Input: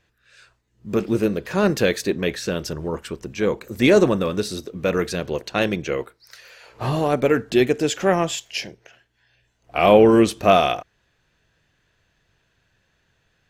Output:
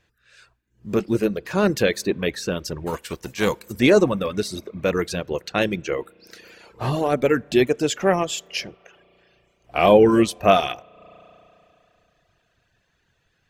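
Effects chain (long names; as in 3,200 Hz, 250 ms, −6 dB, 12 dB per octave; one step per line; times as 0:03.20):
0:02.86–0:03.71: spectral envelope flattened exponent 0.6
spring reverb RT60 2.9 s, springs 34 ms, chirp 60 ms, DRR 18.5 dB
reverb reduction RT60 0.69 s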